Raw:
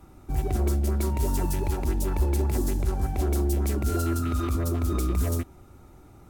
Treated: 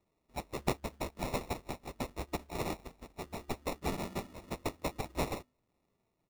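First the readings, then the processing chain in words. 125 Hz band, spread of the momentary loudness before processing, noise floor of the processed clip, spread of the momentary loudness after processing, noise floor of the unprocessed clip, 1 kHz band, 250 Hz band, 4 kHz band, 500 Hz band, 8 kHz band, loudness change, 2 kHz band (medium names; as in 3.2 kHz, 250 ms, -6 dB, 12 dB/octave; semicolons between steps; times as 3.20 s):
-18.5 dB, 3 LU, -80 dBFS, 8 LU, -51 dBFS, -4.5 dB, -11.5 dB, -2.0 dB, -7.5 dB, -11.0 dB, -12.5 dB, -2.0 dB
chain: time-frequency box 2.49–2.76 s, 1.3–8.5 kHz +12 dB; pre-emphasis filter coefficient 0.97; hum notches 50/100/150/200/250 Hz; comb 3.7 ms, depth 70%; peak limiter -26.5 dBFS, peak gain reduction 10 dB; static phaser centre 2.6 kHz, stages 6; feedback comb 60 Hz, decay 0.21 s, harmonics all, mix 30%; sample-and-hold 28×; upward expansion 2.5:1, over -54 dBFS; trim +13.5 dB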